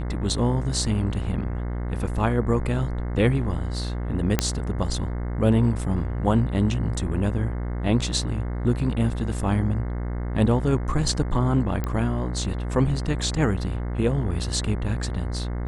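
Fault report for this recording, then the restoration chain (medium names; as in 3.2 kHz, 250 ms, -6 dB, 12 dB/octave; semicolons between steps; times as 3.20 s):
buzz 60 Hz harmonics 36 -28 dBFS
4.39 s: pop -4 dBFS
11.84 s: pop -14 dBFS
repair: de-click; de-hum 60 Hz, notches 36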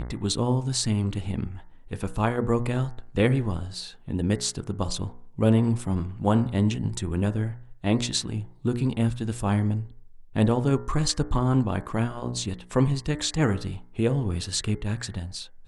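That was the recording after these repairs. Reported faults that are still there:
nothing left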